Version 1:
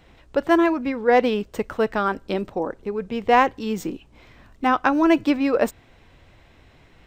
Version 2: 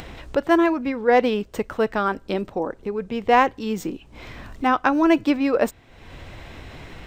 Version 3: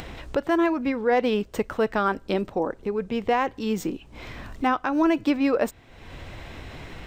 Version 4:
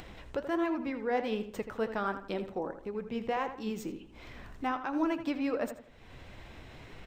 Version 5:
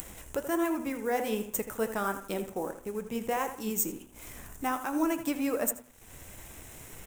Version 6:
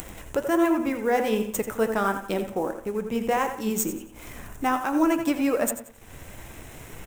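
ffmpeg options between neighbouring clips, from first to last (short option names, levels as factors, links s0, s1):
-af "acompressor=mode=upward:threshold=0.0501:ratio=2.5"
-af "alimiter=limit=0.224:level=0:latency=1:release=160"
-filter_complex "[0:a]flanger=delay=2.6:depth=7.1:regen=74:speed=1.4:shape=triangular,asplit=2[s0][s1];[s1]adelay=81,lowpass=f=3400:p=1,volume=0.316,asplit=2[s2][s3];[s3]adelay=81,lowpass=f=3400:p=1,volume=0.37,asplit=2[s4][s5];[s5]adelay=81,lowpass=f=3400:p=1,volume=0.37,asplit=2[s6][s7];[s7]adelay=81,lowpass=f=3400:p=1,volume=0.37[s8];[s0][s2][s4][s6][s8]amix=inputs=5:normalize=0,volume=0.531"
-af "aeval=exprs='sgn(val(0))*max(abs(val(0))-0.00112,0)':c=same,bandreject=f=124.7:t=h:w=4,bandreject=f=249.4:t=h:w=4,bandreject=f=374.1:t=h:w=4,bandreject=f=498.8:t=h:w=4,bandreject=f=623.5:t=h:w=4,bandreject=f=748.2:t=h:w=4,bandreject=f=872.9:t=h:w=4,bandreject=f=997.6:t=h:w=4,bandreject=f=1122.3:t=h:w=4,bandreject=f=1247:t=h:w=4,bandreject=f=1371.7:t=h:w=4,bandreject=f=1496.4:t=h:w=4,bandreject=f=1621.1:t=h:w=4,bandreject=f=1745.8:t=h:w=4,bandreject=f=1870.5:t=h:w=4,bandreject=f=1995.2:t=h:w=4,bandreject=f=2119.9:t=h:w=4,bandreject=f=2244.6:t=h:w=4,bandreject=f=2369.3:t=h:w=4,bandreject=f=2494:t=h:w=4,bandreject=f=2618.7:t=h:w=4,bandreject=f=2743.4:t=h:w=4,bandreject=f=2868.1:t=h:w=4,bandreject=f=2992.8:t=h:w=4,bandreject=f=3117.5:t=h:w=4,bandreject=f=3242.2:t=h:w=4,bandreject=f=3366.9:t=h:w=4,bandreject=f=3491.6:t=h:w=4,bandreject=f=3616.3:t=h:w=4,aexciter=amount=13.4:drive=5:freq=6600,volume=1.26"
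-filter_complex "[0:a]asplit=2[s0][s1];[s1]adynamicsmooth=sensitivity=7.5:basefreq=5200,volume=1.19[s2];[s0][s2]amix=inputs=2:normalize=0,aecho=1:1:90|180|270:0.224|0.0694|0.0215"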